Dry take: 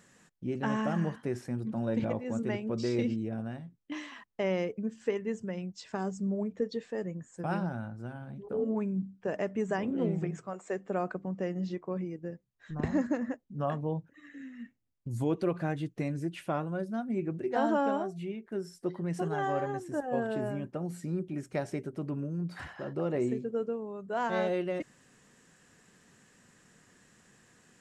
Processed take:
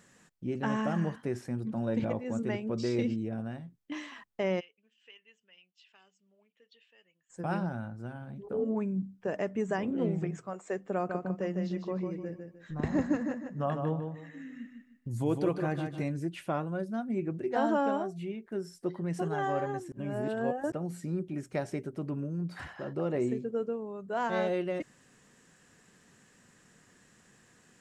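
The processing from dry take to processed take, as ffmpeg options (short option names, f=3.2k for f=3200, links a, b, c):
-filter_complex "[0:a]asplit=3[a][b][c];[a]afade=t=out:st=4.59:d=0.02[d];[b]bandpass=f=2.9k:t=q:w=7.1,afade=t=in:st=4.59:d=0.02,afade=t=out:st=7.29:d=0.02[e];[c]afade=t=in:st=7.29:d=0.02[f];[d][e][f]amix=inputs=3:normalize=0,asettb=1/sr,asplit=3[g][h][i];[g]atrim=end=10.944[j];[h]atrim=start=10.94:end=16.09,asetpts=PTS-STARTPTS,afade=t=in:d=0.004:c=qsin,afade=t=out:st=5.146:d=0.004:c=qsin,aecho=1:1:152|304|456|608:0.501|0.15|0.0451|0.0135,atrim=end_sample=227115[k];[i]atrim=start=16.086[l];[j][k]acrossfade=d=0.004:c1=hsin:c2=qsin[m];[m][l]acrossfade=d=0.004:c1=qsin:c2=hsin,asplit=3[n][o][p];[n]atrim=end=19.922[q];[o]atrim=start=19.918:end=20.722,asetpts=PTS-STARTPTS,areverse[r];[p]atrim=start=20.718[s];[q][r]acrossfade=d=0.004:c1=hsin:c2=hsin[t];[t][s]acrossfade=d=0.004:c1=hsin:c2=hsin"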